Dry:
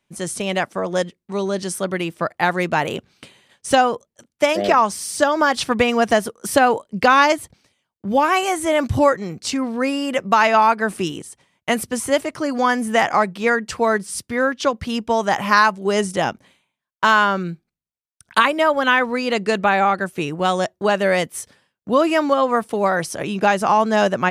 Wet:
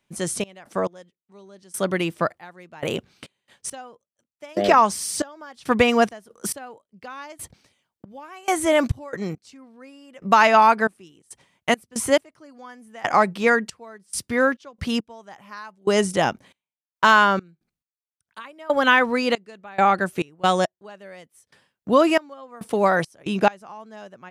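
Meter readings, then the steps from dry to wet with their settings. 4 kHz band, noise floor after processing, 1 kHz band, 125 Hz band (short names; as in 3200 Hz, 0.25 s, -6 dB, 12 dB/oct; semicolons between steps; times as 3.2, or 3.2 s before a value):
-4.0 dB, under -85 dBFS, -4.0 dB, -4.0 dB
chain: step gate "xx.x....xxx.." 69 bpm -24 dB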